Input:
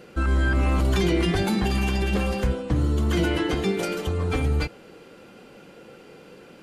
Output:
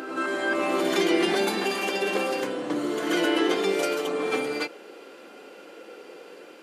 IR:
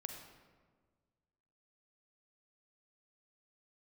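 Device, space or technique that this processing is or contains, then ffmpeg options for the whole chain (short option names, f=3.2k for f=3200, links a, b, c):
ghost voice: -filter_complex "[0:a]areverse[a];[1:a]atrim=start_sample=2205[b];[a][b]afir=irnorm=-1:irlink=0,areverse,highpass=f=300:w=0.5412,highpass=f=300:w=1.3066,volume=5.5dB"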